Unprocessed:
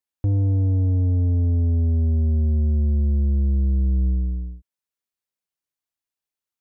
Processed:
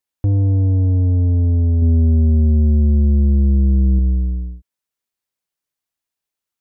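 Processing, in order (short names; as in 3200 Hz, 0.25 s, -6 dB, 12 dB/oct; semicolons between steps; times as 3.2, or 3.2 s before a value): 1.82–3.99 bell 210 Hz +5 dB 2.1 oct; gain +4.5 dB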